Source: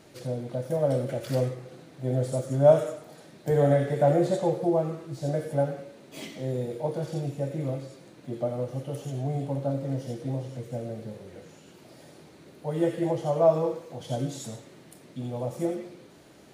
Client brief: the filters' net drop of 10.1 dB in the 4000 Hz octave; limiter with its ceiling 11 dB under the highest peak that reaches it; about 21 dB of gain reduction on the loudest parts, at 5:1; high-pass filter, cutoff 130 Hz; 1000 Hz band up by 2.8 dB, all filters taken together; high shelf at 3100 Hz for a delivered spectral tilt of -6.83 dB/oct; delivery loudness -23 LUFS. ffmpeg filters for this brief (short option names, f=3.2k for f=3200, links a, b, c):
-af "highpass=130,equalizer=f=1k:t=o:g=5.5,highshelf=f=3.1k:g=-8,equalizer=f=4k:t=o:g=-7.5,acompressor=threshold=-36dB:ratio=5,volume=21dB,alimiter=limit=-13dB:level=0:latency=1"